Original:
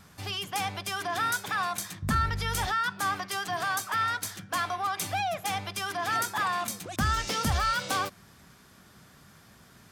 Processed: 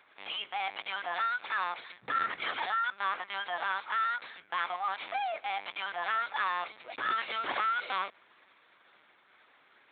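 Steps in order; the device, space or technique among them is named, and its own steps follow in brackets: talking toy (LPC vocoder at 8 kHz pitch kept; high-pass 560 Hz 12 dB/octave; peaking EQ 2.2 kHz +6.5 dB 0.26 oct); hum notches 50/100/150 Hz; trim -2.5 dB

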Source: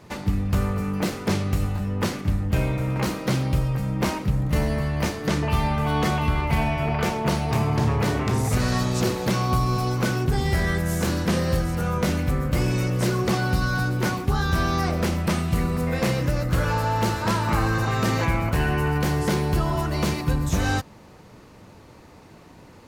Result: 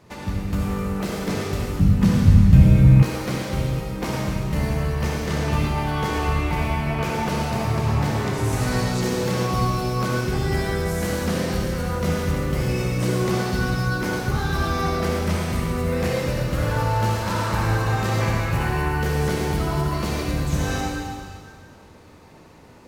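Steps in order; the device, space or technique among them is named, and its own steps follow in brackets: stairwell (reverberation RT60 2.0 s, pre-delay 52 ms, DRR -3 dB); 1.79–3.03 s: resonant low shelf 270 Hz +12 dB, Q 1.5; trim -4.5 dB

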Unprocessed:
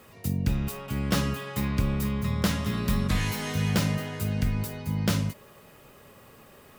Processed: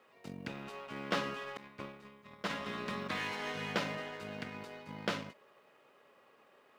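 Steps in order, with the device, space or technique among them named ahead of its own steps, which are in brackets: 1.57–2.50 s: expander -19 dBFS; phone line with mismatched companding (band-pass 390–3200 Hz; companding laws mixed up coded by A); trim -1 dB

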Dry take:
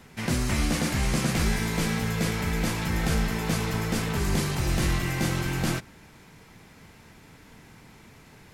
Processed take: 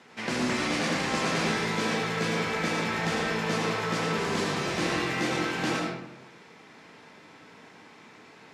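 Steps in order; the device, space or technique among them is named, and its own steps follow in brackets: supermarket ceiling speaker (band-pass 290–5600 Hz; reverberation RT60 0.90 s, pre-delay 71 ms, DRR -0.5 dB)

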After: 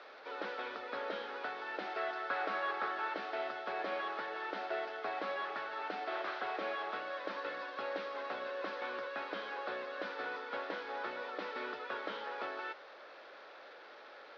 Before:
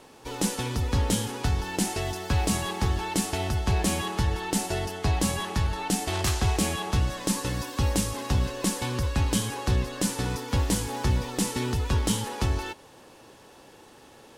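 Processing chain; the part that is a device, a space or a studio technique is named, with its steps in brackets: digital answering machine (band-pass 370–3200 Hz; one-bit delta coder 32 kbps, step -42.5 dBFS; cabinet simulation 470–4100 Hz, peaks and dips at 600 Hz +6 dB, 910 Hz -6 dB, 1.4 kHz +8 dB, 2.9 kHz -6 dB); 1.97–3.15 s: peaking EQ 1.4 kHz +5.5 dB 0.81 oct; trim -4.5 dB

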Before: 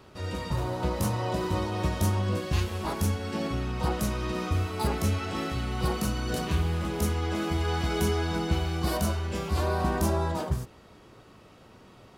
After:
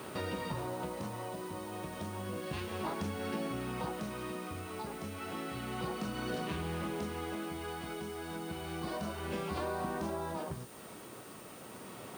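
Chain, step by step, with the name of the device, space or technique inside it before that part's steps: medium wave at night (band-pass 160–3700 Hz; compression 6:1, threshold -44 dBFS, peak gain reduction 18.5 dB; tremolo 0.31 Hz, depth 46%; whistle 9 kHz -68 dBFS; white noise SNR 18 dB); trim +9 dB

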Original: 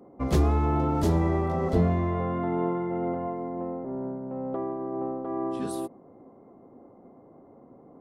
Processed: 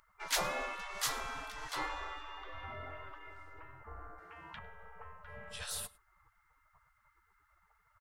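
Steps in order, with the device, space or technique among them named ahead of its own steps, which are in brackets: 4.18–4.59 s: frequency weighting D; exciter from parts (in parallel at -6 dB: high-pass 2.7 kHz 6 dB/octave + saturation -36.5 dBFS, distortion -16 dB); on the sum: spectral gate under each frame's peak -25 dB weak; bass shelf 150 Hz +7.5 dB; delay 103 ms -23.5 dB; trim +5.5 dB

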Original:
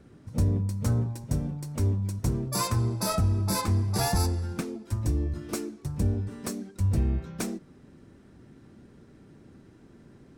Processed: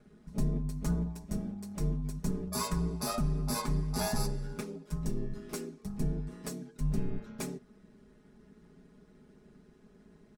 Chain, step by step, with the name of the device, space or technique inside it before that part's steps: ring-modulated robot voice (ring modulator 54 Hz; comb 4.8 ms, depth 81%); trim -5 dB

